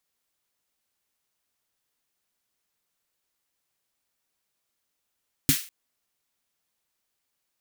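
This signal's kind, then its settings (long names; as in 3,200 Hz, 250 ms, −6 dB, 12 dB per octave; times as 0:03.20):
synth snare length 0.20 s, tones 150 Hz, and 270 Hz, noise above 1,600 Hz, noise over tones −1.5 dB, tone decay 0.10 s, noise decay 0.37 s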